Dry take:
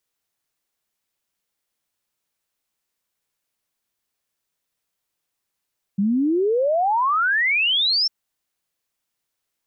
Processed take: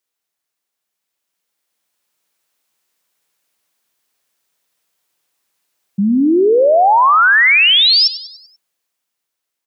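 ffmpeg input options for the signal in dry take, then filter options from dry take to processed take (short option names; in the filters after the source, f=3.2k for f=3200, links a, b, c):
-f lavfi -i "aevalsrc='0.15*clip(min(t,2.1-t)/0.01,0,1)*sin(2*PI*190*2.1/log(5500/190)*(exp(log(5500/190)*t/2.1)-1))':d=2.1:s=44100"
-af "highpass=f=250:p=1,dynaudnorm=f=380:g=9:m=10dB,aecho=1:1:97|194|291|388|485:0.178|0.0889|0.0445|0.0222|0.0111"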